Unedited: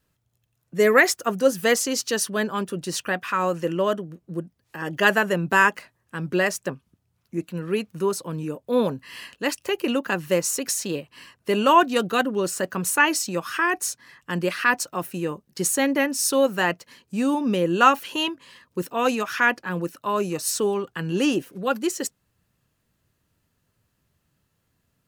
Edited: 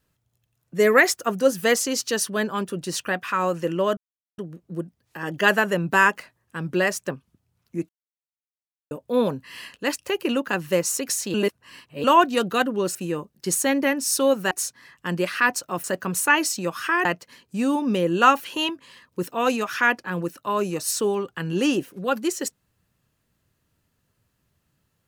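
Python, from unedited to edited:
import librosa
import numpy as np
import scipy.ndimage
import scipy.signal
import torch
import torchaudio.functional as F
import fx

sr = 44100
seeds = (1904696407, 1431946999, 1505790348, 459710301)

y = fx.edit(x, sr, fx.insert_silence(at_s=3.97, length_s=0.41),
    fx.silence(start_s=7.48, length_s=1.02),
    fx.reverse_span(start_s=10.93, length_s=0.7),
    fx.swap(start_s=12.54, length_s=1.21, other_s=15.08, other_length_s=1.56), tone=tone)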